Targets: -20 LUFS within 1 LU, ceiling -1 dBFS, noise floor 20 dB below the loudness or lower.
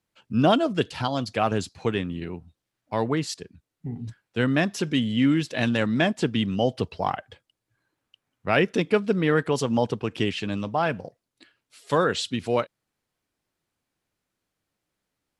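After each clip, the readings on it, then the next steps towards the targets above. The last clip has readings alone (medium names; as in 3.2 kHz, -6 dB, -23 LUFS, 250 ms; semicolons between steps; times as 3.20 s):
loudness -25.0 LUFS; peak level -7.0 dBFS; loudness target -20.0 LUFS
-> trim +5 dB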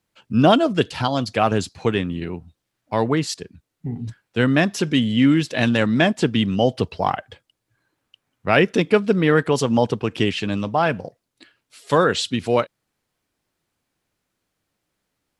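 loudness -20.0 LUFS; peak level -2.0 dBFS; noise floor -78 dBFS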